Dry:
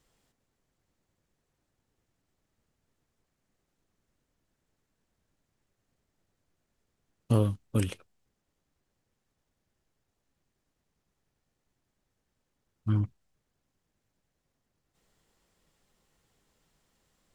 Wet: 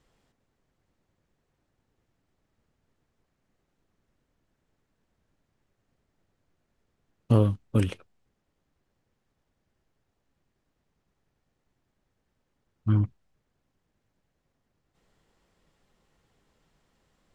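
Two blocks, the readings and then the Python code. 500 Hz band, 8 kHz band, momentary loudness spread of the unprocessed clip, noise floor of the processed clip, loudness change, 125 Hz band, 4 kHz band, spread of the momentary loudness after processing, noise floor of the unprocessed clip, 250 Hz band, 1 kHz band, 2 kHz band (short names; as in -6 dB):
+4.0 dB, n/a, 11 LU, -79 dBFS, +4.0 dB, +4.0 dB, +1.0 dB, 10 LU, -82 dBFS, +4.0 dB, +3.5 dB, +2.5 dB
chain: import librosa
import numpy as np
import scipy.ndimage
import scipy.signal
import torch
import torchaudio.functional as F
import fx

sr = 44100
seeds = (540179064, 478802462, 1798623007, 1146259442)

y = fx.lowpass(x, sr, hz=3100.0, slope=6)
y = y * librosa.db_to_amplitude(4.0)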